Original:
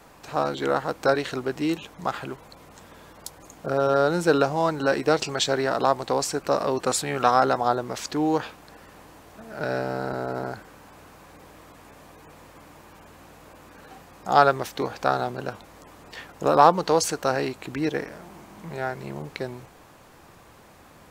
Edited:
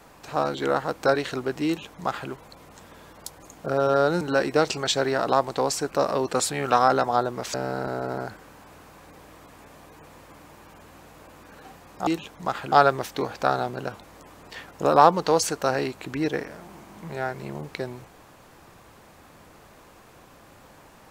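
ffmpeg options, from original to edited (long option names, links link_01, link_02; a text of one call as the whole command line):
ffmpeg -i in.wav -filter_complex "[0:a]asplit=5[link_01][link_02][link_03][link_04][link_05];[link_01]atrim=end=4.212[link_06];[link_02]atrim=start=4.728:end=8.062[link_07];[link_03]atrim=start=9.798:end=14.332[link_08];[link_04]atrim=start=1.658:end=2.312[link_09];[link_05]atrim=start=14.328[link_10];[link_06][link_07]acrossfade=duration=0.004:curve1=hsin:curve2=hsin[link_11];[link_11][link_08]acrossfade=duration=0.004:curve1=hsin:curve2=hsin[link_12];[link_12][link_09]acrossfade=duration=0.004:curve1=hsin:curve2=hsin[link_13];[link_13][link_10]acrossfade=duration=0.004:curve1=hsin:curve2=hsin" out.wav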